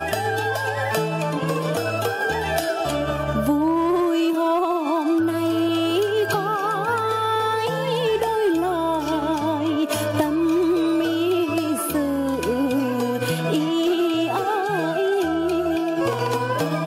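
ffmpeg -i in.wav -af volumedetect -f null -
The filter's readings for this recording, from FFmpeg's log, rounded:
mean_volume: -21.5 dB
max_volume: -9.7 dB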